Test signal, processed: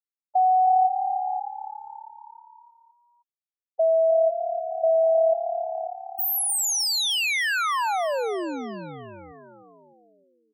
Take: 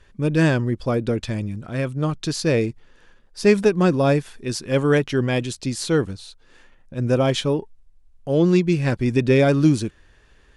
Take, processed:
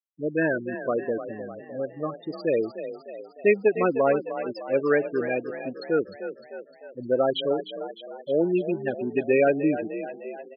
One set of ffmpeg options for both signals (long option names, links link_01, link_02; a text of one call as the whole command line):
ffmpeg -i in.wav -filter_complex "[0:a]afftfilt=real='re*gte(hypot(re,im),0.178)':imag='im*gte(hypot(re,im),0.178)':win_size=1024:overlap=0.75,highpass=420,asplit=7[link_01][link_02][link_03][link_04][link_05][link_06][link_07];[link_02]adelay=304,afreqshift=35,volume=-11dB[link_08];[link_03]adelay=608,afreqshift=70,volume=-15.9dB[link_09];[link_04]adelay=912,afreqshift=105,volume=-20.8dB[link_10];[link_05]adelay=1216,afreqshift=140,volume=-25.6dB[link_11];[link_06]adelay=1520,afreqshift=175,volume=-30.5dB[link_12];[link_07]adelay=1824,afreqshift=210,volume=-35.4dB[link_13];[link_01][link_08][link_09][link_10][link_11][link_12][link_13]amix=inputs=7:normalize=0" out.wav